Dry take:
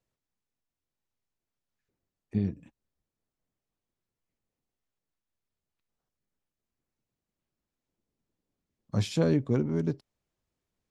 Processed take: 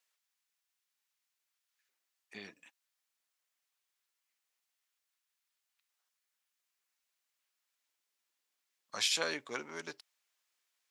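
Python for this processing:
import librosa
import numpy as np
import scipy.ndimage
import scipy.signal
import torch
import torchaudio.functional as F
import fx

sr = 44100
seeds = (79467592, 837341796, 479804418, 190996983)

y = scipy.signal.sosfilt(scipy.signal.butter(2, 1500.0, 'highpass', fs=sr, output='sos'), x)
y = y * librosa.db_to_amplitude(8.5)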